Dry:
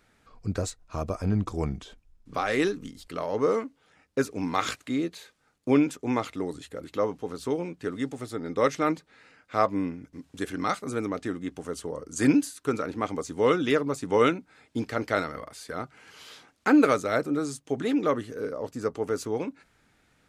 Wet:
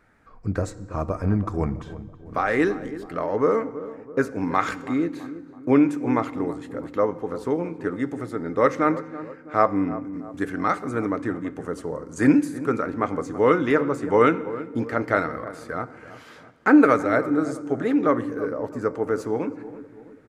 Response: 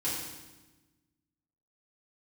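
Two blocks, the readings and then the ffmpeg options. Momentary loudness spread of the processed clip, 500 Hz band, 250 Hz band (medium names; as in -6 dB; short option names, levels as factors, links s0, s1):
14 LU, +4.0 dB, +5.0 dB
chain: -filter_complex "[0:a]highshelf=f=2400:t=q:w=1.5:g=-8.5,asplit=2[s0][s1];[s1]adelay=329,lowpass=f=1100:p=1,volume=0.2,asplit=2[s2][s3];[s3]adelay=329,lowpass=f=1100:p=1,volume=0.54,asplit=2[s4][s5];[s5]adelay=329,lowpass=f=1100:p=1,volume=0.54,asplit=2[s6][s7];[s7]adelay=329,lowpass=f=1100:p=1,volume=0.54,asplit=2[s8][s9];[s9]adelay=329,lowpass=f=1100:p=1,volume=0.54[s10];[s0][s2][s4][s6][s8][s10]amix=inputs=6:normalize=0,asplit=2[s11][s12];[1:a]atrim=start_sample=2205,lowpass=8100[s13];[s12][s13]afir=irnorm=-1:irlink=0,volume=0.112[s14];[s11][s14]amix=inputs=2:normalize=0,volume=1.41"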